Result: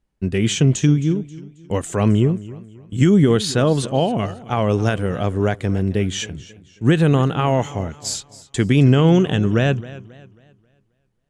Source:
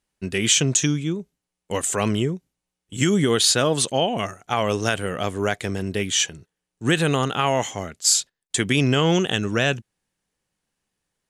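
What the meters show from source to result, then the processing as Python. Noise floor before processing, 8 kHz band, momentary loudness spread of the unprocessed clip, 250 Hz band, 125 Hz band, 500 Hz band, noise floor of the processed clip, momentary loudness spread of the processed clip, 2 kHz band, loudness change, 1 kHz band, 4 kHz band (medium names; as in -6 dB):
-84 dBFS, -8.5 dB, 11 LU, +6.5 dB, +8.5 dB, +3.5 dB, -66 dBFS, 15 LU, -2.5 dB, +3.0 dB, +0.5 dB, -5.5 dB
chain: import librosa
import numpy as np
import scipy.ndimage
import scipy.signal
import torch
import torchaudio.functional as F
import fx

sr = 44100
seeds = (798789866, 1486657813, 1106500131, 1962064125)

y = fx.tilt_eq(x, sr, slope=-3.0)
y = fx.echo_warbled(y, sr, ms=269, feedback_pct=37, rate_hz=2.8, cents=77, wet_db=-18.0)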